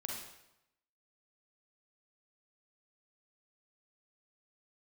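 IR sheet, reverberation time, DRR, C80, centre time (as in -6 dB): 0.85 s, -2.0 dB, 4.5 dB, 57 ms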